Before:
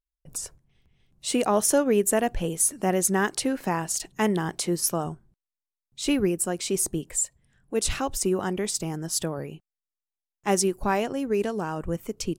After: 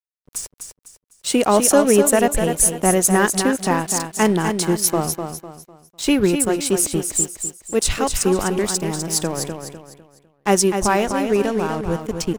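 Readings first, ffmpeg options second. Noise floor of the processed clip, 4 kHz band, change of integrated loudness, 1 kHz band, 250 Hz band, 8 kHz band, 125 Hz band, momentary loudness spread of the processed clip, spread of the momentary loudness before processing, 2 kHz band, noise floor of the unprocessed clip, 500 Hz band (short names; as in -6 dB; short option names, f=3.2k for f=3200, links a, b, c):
-65 dBFS, +7.0 dB, +7.5 dB, +7.5 dB, +7.5 dB, +7.5 dB, +7.0 dB, 14 LU, 11 LU, +7.5 dB, under -85 dBFS, +7.5 dB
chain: -af "aeval=exprs='sgn(val(0))*max(abs(val(0))-0.00841,0)':c=same,aecho=1:1:251|502|753|1004:0.447|0.152|0.0516|0.0176,volume=7.5dB"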